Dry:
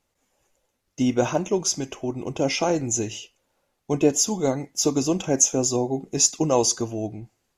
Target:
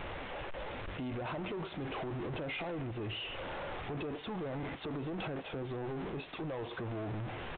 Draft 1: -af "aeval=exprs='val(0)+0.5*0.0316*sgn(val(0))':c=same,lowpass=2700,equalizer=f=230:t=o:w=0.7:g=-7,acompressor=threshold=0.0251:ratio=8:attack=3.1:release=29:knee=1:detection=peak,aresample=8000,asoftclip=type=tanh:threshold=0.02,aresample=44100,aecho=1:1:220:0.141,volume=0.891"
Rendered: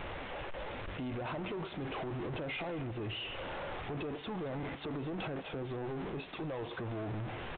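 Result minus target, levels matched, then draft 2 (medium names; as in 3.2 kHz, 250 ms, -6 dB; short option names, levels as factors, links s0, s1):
echo-to-direct +7 dB
-af "aeval=exprs='val(0)+0.5*0.0316*sgn(val(0))':c=same,lowpass=2700,equalizer=f=230:t=o:w=0.7:g=-7,acompressor=threshold=0.0251:ratio=8:attack=3.1:release=29:knee=1:detection=peak,aresample=8000,asoftclip=type=tanh:threshold=0.02,aresample=44100,aecho=1:1:220:0.0631,volume=0.891"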